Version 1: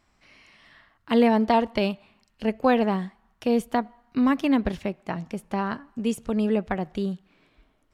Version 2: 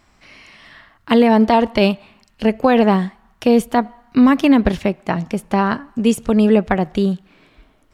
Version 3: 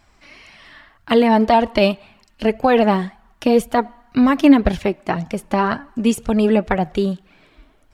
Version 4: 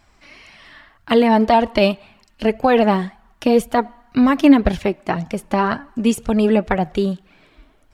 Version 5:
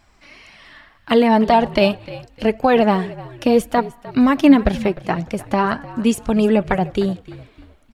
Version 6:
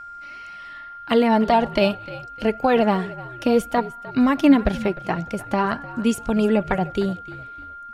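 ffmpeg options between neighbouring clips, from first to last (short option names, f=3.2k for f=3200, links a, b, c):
-af "alimiter=level_in=13dB:limit=-1dB:release=50:level=0:latency=1,volume=-2.5dB"
-af "flanger=delay=1.2:depth=2.3:regen=40:speed=1.9:shape=sinusoidal,volume=3.5dB"
-af anull
-filter_complex "[0:a]asplit=4[a][b][c][d];[b]adelay=303,afreqshift=-56,volume=-18dB[e];[c]adelay=606,afreqshift=-112,volume=-27.4dB[f];[d]adelay=909,afreqshift=-168,volume=-36.7dB[g];[a][e][f][g]amix=inputs=4:normalize=0"
-af "aeval=exprs='val(0)+0.0251*sin(2*PI*1400*n/s)':c=same,volume=-3.5dB"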